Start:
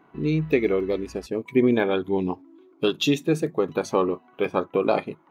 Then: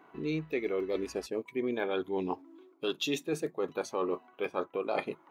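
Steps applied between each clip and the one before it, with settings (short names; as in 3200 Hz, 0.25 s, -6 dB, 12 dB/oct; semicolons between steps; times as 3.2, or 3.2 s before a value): tone controls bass -11 dB, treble +1 dB; reverse; compressor, threshold -29 dBFS, peak gain reduction 12.5 dB; reverse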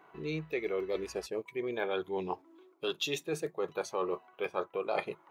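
bell 260 Hz -14.5 dB 0.39 oct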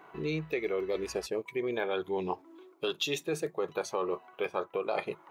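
compressor 2.5:1, threshold -35 dBFS, peak gain reduction 6 dB; gain +5.5 dB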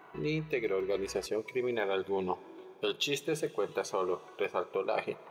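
reverb RT60 4.5 s, pre-delay 35 ms, DRR 19 dB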